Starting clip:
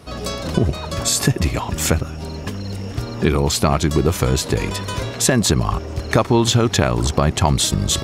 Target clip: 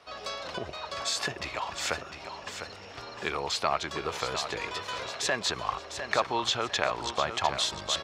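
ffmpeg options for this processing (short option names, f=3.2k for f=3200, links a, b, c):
-filter_complex "[0:a]acrossover=split=540 5700:gain=0.0794 1 0.0891[a][b][c];[a][b][c]amix=inputs=3:normalize=0,aecho=1:1:703|1406|2109|2812:0.355|0.114|0.0363|0.0116,volume=-6dB"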